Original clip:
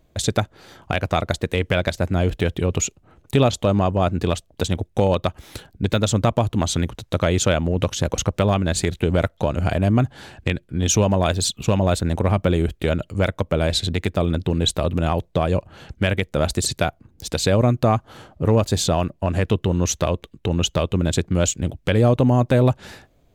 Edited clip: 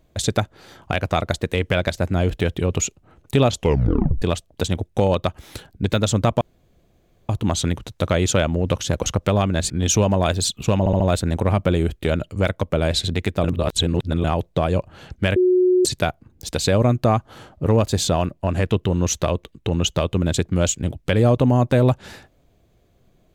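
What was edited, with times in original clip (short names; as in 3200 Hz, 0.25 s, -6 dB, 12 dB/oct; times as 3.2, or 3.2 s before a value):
3.55 tape stop 0.67 s
6.41 insert room tone 0.88 s
8.82–10.7 cut
11.79 stutter 0.07 s, 4 plays
14.23–15.03 reverse
16.15–16.64 bleep 365 Hz -12.5 dBFS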